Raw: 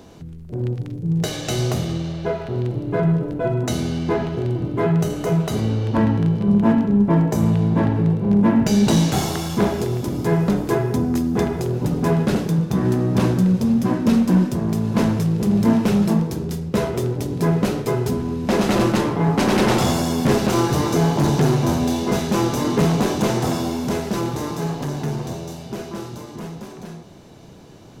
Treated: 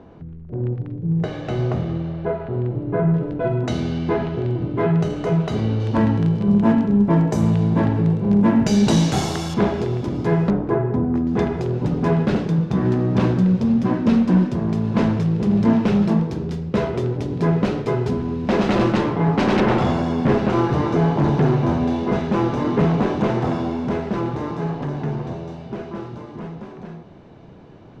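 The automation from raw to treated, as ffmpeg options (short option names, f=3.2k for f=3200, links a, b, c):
-af "asetnsamples=n=441:p=0,asendcmd='3.14 lowpass f 3700;5.8 lowpass f 7600;9.54 lowpass f 3700;10.5 lowpass f 1400;11.27 lowpass f 3700;19.6 lowpass f 2300',lowpass=1.7k"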